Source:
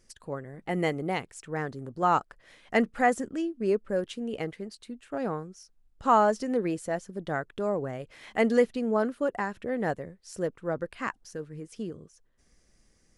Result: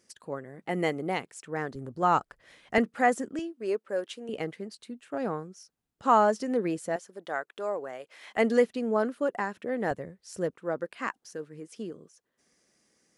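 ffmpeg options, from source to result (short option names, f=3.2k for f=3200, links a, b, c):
-af "asetnsamples=n=441:p=0,asendcmd='1.75 highpass f 48;2.78 highpass f 170;3.39 highpass f 420;4.29 highpass f 140;6.96 highpass f 500;8.37 highpass f 190;9.91 highpass f 82;10.54 highpass f 220',highpass=170"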